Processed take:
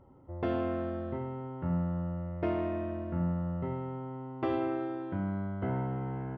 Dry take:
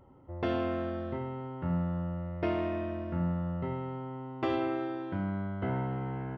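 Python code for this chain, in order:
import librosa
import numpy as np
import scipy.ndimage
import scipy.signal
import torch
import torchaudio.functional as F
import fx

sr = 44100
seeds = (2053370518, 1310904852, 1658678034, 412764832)

y = fx.high_shelf(x, sr, hz=2600.0, db=-11.5)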